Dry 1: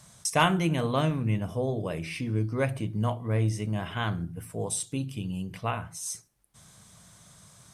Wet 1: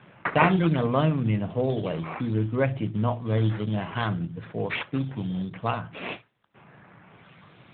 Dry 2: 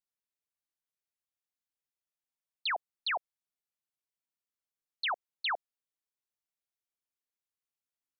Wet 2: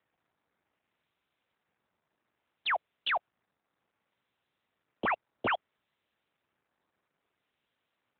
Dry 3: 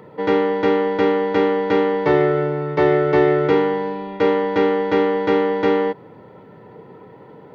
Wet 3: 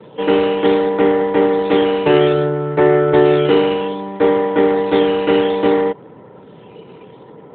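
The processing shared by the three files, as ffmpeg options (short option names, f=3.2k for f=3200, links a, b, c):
-af "acrusher=samples=9:mix=1:aa=0.000001:lfo=1:lforange=9:lforate=0.62,equalizer=f=75:w=3.1:g=-10.5,acrusher=bits=5:mode=log:mix=0:aa=0.000001,volume=4dB" -ar 8000 -c:a libopencore_amrnb -b:a 12200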